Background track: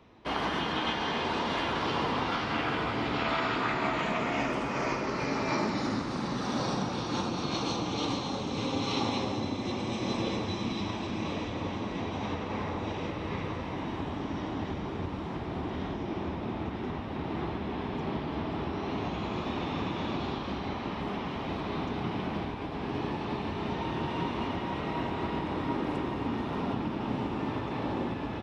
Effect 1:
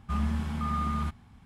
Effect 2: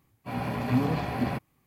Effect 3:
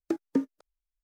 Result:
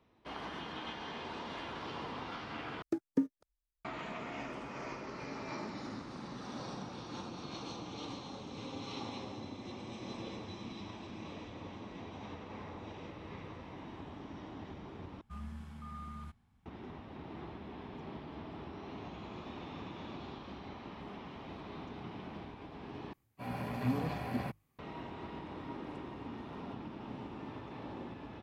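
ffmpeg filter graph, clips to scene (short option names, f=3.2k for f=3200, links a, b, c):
-filter_complex "[0:a]volume=-12.5dB[a];[3:a]equalizer=f=82:t=o:w=2.6:g=12.5[b];[2:a]bandreject=f=50:t=h:w=6,bandreject=f=100:t=h:w=6,bandreject=f=150:t=h:w=6[c];[a]asplit=4[d][e][f][g];[d]atrim=end=2.824[h];[b]atrim=end=1.03,asetpts=PTS-STARTPTS,volume=-8dB[i];[e]atrim=start=3.846:end=15.214[j];[1:a]atrim=end=1.45,asetpts=PTS-STARTPTS,volume=-16dB[k];[f]atrim=start=16.656:end=23.134[l];[c]atrim=end=1.66,asetpts=PTS-STARTPTS,volume=-8dB[m];[g]atrim=start=24.786[n];[h][i]acrossfade=d=0.004:c1=hsin:c2=hsin[o];[o][j]acrossfade=d=0.004:c1=hsin:c2=hsin[p];[p][k]acrossfade=d=0.004:c1=hsin:c2=hsin[q];[q][l]acrossfade=d=0.004:c1=hsin:c2=hsin[r];[r][m]acrossfade=d=0.004:c1=hsin:c2=hsin[s];[s][n]acrossfade=d=0.004:c1=hsin:c2=hsin"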